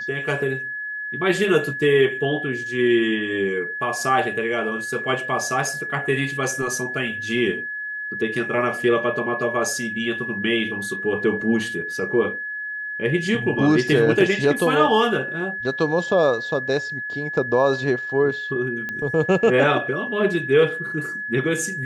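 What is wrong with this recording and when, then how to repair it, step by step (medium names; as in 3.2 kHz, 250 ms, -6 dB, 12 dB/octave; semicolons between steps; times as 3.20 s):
whine 1.7 kHz -27 dBFS
18.89 s: pop -16 dBFS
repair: de-click; band-stop 1.7 kHz, Q 30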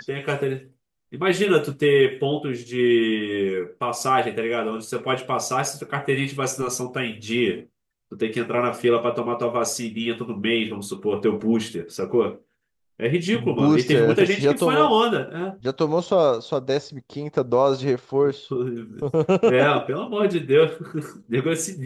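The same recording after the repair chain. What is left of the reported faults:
nothing left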